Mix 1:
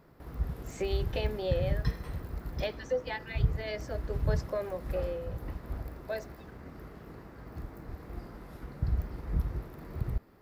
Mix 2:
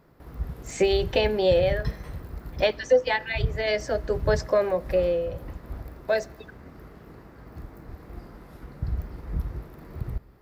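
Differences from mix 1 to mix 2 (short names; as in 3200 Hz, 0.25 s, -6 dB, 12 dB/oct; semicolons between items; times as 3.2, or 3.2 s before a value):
speech +12.0 dB; background: send on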